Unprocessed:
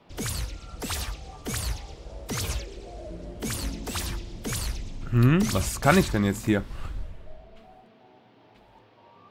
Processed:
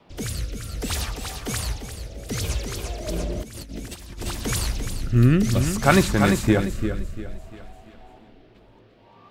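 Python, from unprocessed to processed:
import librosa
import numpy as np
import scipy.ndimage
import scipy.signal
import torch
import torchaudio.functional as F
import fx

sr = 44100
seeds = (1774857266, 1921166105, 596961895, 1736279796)

y = fx.echo_feedback(x, sr, ms=345, feedback_pct=40, wet_db=-7.5)
y = fx.over_compress(y, sr, threshold_db=-36.0, ratio=-0.5, at=(3.07, 4.31), fade=0.02)
y = fx.rotary(y, sr, hz=0.6)
y = y * librosa.db_to_amplitude(5.0)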